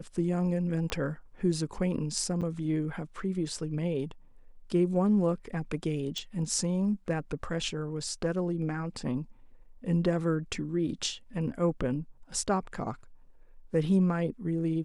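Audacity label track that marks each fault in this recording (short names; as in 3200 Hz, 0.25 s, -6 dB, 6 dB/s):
0.900000	0.900000	pop -19 dBFS
2.410000	2.420000	gap 7.4 ms
6.180000	6.180000	pop -22 dBFS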